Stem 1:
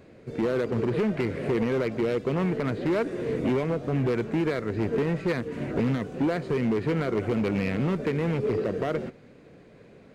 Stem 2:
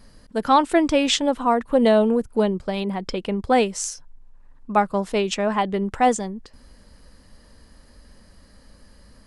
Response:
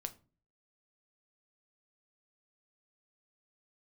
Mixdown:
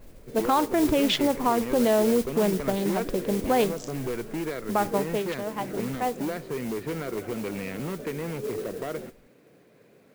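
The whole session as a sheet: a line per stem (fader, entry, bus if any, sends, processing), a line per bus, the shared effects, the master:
-4.5 dB, 0.00 s, no send, HPF 140 Hz
4.85 s -1.5 dB -> 5.42 s -12.5 dB, 0.00 s, send -6 dB, Wiener smoothing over 25 samples; LPF 3800 Hz 12 dB/oct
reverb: on, RT60 0.35 s, pre-delay 6 ms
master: modulation noise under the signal 17 dB; bell 200 Hz -2.5 dB; limiter -13.5 dBFS, peak gain reduction 9.5 dB

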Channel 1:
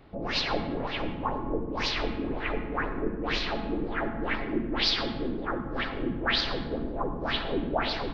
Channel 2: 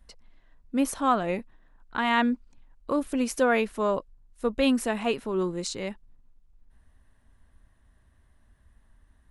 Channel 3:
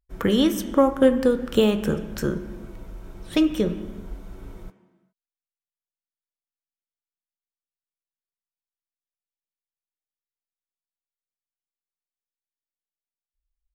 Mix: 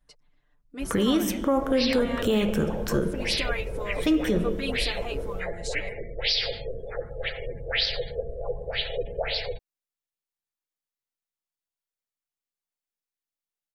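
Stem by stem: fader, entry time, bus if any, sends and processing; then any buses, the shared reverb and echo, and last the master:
+0.5 dB, 1.45 s, no send, EQ curve 120 Hz 0 dB, 300 Hz -29 dB, 480 Hz +7 dB, 1100 Hz -19 dB, 2100 Hz -1 dB, 3600 Hz -5 dB, 7700 Hz -2 dB; spectral gate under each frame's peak -30 dB strong; high shelf 2800 Hz +11.5 dB
-5.5 dB, 0.00 s, no send, harmonic-percussive split harmonic -10 dB; comb 6.8 ms, depth 88%
+1.0 dB, 0.70 s, no send, dry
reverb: off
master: limiter -14.5 dBFS, peak gain reduction 9.5 dB

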